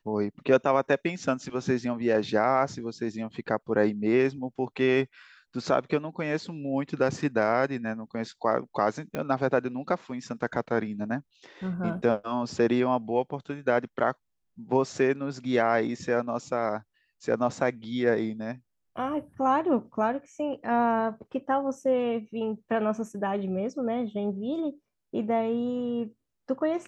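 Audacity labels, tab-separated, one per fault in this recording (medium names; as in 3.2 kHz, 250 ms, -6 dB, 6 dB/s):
9.150000	9.150000	pop -18 dBFS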